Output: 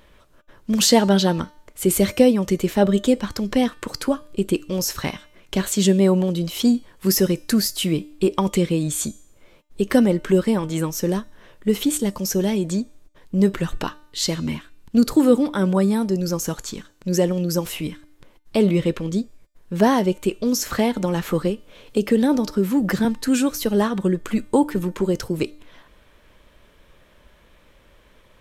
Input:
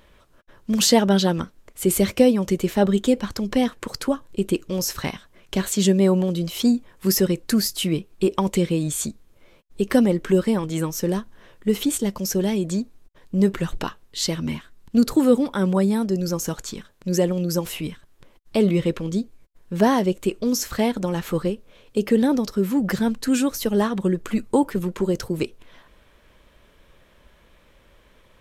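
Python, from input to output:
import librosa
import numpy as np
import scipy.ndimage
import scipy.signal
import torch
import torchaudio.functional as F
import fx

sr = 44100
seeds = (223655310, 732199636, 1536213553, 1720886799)

y = fx.comb_fb(x, sr, f0_hz=300.0, decay_s=0.66, harmonics='all', damping=0.0, mix_pct=50)
y = fx.band_squash(y, sr, depth_pct=40, at=(20.66, 23.05))
y = y * 10.0 ** (7.0 / 20.0)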